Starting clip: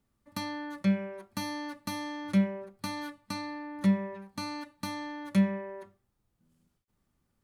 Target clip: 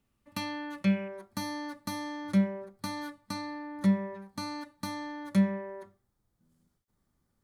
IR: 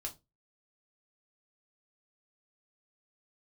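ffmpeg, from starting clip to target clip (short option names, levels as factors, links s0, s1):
-af "asetnsamples=n=441:p=0,asendcmd='1.08 equalizer g -7.5',equalizer=f=2700:t=o:w=0.4:g=7.5"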